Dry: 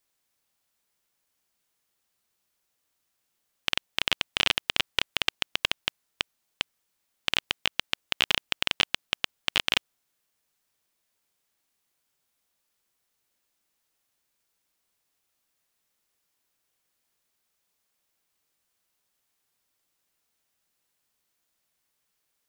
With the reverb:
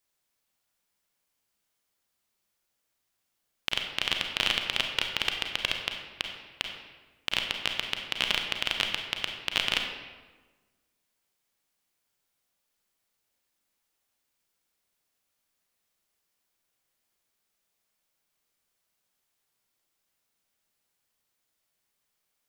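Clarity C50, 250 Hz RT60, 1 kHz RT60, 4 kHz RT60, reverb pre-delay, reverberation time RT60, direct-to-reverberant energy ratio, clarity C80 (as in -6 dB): 5.0 dB, 1.5 s, 1.2 s, 0.90 s, 33 ms, 1.3 s, 3.0 dB, 6.5 dB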